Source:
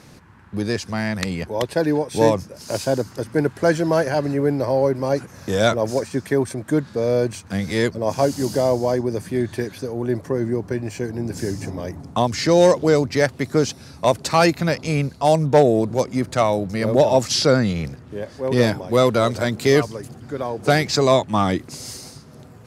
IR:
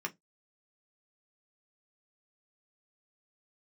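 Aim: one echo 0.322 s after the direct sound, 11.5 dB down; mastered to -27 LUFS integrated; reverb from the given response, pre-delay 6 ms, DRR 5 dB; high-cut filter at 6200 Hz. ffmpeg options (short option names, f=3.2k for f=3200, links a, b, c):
-filter_complex "[0:a]lowpass=6.2k,aecho=1:1:322:0.266,asplit=2[a][b];[1:a]atrim=start_sample=2205,adelay=6[c];[b][c]afir=irnorm=-1:irlink=0,volume=-7.5dB[d];[a][d]amix=inputs=2:normalize=0,volume=-7.5dB"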